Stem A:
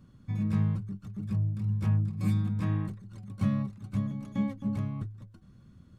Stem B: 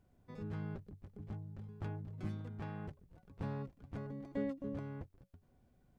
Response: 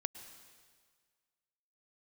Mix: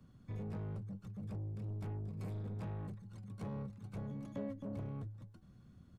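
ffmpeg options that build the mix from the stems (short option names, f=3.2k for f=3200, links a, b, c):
-filter_complex "[0:a]acrossover=split=120|260[a][b][c];[a]acompressor=threshold=-32dB:ratio=4[d];[b]acompressor=threshold=-33dB:ratio=4[e];[c]acompressor=threshold=-44dB:ratio=4[f];[d][e][f]amix=inputs=3:normalize=0,asoftclip=type=tanh:threshold=-34dB,volume=-5dB[g];[1:a]bandpass=f=600:t=q:w=0.95:csg=0,adelay=4.9,volume=-6dB,asplit=2[h][i];[i]volume=-9.5dB[j];[2:a]atrim=start_sample=2205[k];[j][k]afir=irnorm=-1:irlink=0[l];[g][h][l]amix=inputs=3:normalize=0"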